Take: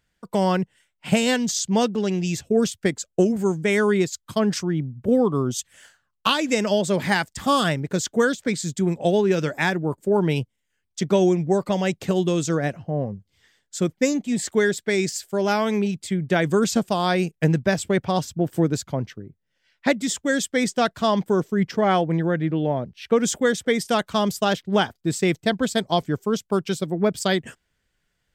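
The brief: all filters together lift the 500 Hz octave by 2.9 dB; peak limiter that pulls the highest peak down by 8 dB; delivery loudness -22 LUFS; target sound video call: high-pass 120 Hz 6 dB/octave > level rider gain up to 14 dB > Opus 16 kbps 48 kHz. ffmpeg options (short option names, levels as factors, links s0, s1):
-af "equalizer=f=500:t=o:g=4,alimiter=limit=0.266:level=0:latency=1,highpass=f=120:p=1,dynaudnorm=m=5.01,volume=0.596" -ar 48000 -c:a libopus -b:a 16k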